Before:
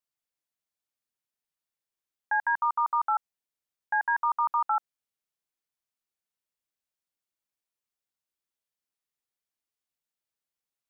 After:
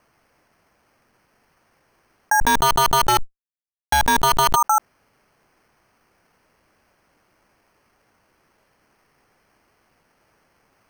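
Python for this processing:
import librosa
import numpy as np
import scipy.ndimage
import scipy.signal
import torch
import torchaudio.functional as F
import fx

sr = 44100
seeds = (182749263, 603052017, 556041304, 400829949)

y = scipy.signal.sosfilt(scipy.signal.bessel(8, 1700.0, 'lowpass', norm='mag', fs=sr, output='sos'), x)
y = fx.fuzz(y, sr, gain_db=55.0, gate_db=-59.0, at=(2.41, 4.54), fade=0.02)
y = np.repeat(scipy.signal.resample_poly(y, 1, 6), 6)[:len(y)]
y = fx.env_flatten(y, sr, amount_pct=100)
y = y * librosa.db_to_amplitude(-2.0)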